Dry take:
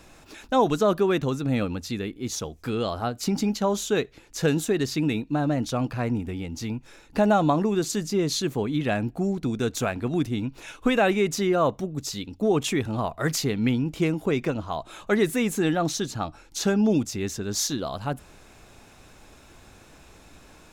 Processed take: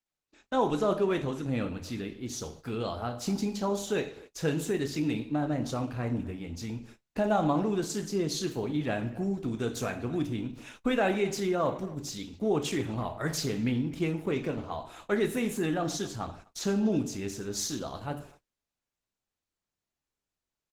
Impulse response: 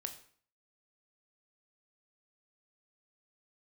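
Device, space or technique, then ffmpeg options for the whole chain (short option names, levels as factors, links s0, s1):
speakerphone in a meeting room: -filter_complex "[1:a]atrim=start_sample=2205[s0];[0:a][s0]afir=irnorm=-1:irlink=0,asplit=2[s1][s2];[s2]adelay=250,highpass=300,lowpass=3400,asoftclip=type=hard:threshold=0.0944,volume=0.112[s3];[s1][s3]amix=inputs=2:normalize=0,dynaudnorm=f=160:g=3:m=1.88,agate=range=0.0112:threshold=0.0112:ratio=16:detection=peak,volume=0.376" -ar 48000 -c:a libopus -b:a 16k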